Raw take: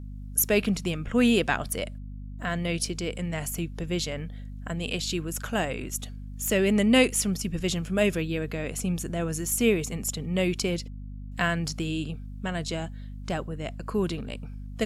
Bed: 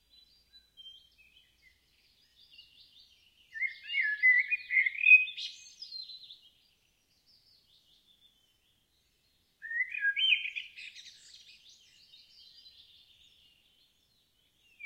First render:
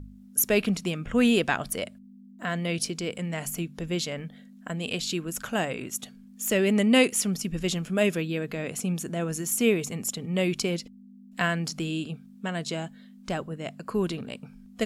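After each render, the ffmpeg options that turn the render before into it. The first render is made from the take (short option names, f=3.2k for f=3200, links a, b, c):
-af "bandreject=f=50:t=h:w=4,bandreject=f=100:t=h:w=4,bandreject=f=150:t=h:w=4"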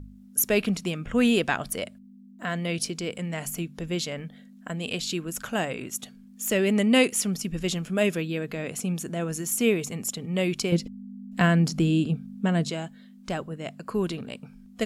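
-filter_complex "[0:a]asettb=1/sr,asplit=3[a][b][c];[a]atrim=end=10.724[d];[b]atrim=start=10.72:end=12.7,asetpts=PTS-STARTPTS,afade=t=in:d=0.004:c=qsin,afade=t=out:st=1.976:d=0.004:c=qsin,lowshelf=f=490:g=11[e];[c]atrim=start=12.696[f];[d][e]acrossfade=d=0.004:c1=hsin:c2=qsin[g];[g][f]acrossfade=d=0.004:c1=qsin:c2=hsin"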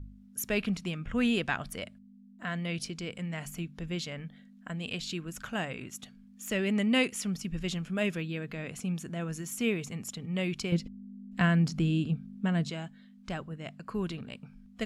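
-af "lowpass=f=2.3k:p=1,equalizer=f=460:t=o:w=2.5:g=-9"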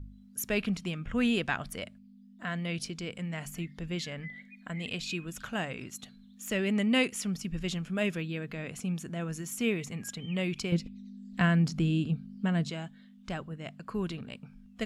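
-filter_complex "[1:a]volume=-23dB[a];[0:a][a]amix=inputs=2:normalize=0"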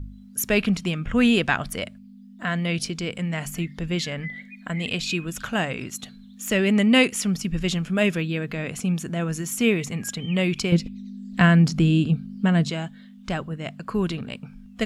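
-af "volume=9dB"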